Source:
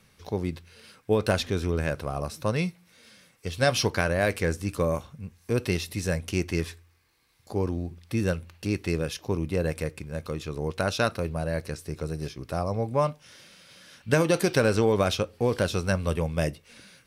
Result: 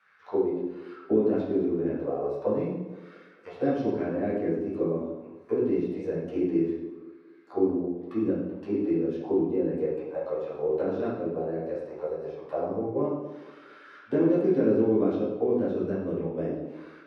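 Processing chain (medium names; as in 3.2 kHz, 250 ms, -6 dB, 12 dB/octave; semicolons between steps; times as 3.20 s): bass shelf 98 Hz -8 dB; auto-wah 290–1500 Hz, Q 4.8, down, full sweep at -24.5 dBFS; feedback echo behind a band-pass 230 ms, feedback 48%, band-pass 470 Hz, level -17 dB; reverberation RT60 0.85 s, pre-delay 8 ms, DRR -8.5 dB; trim +3.5 dB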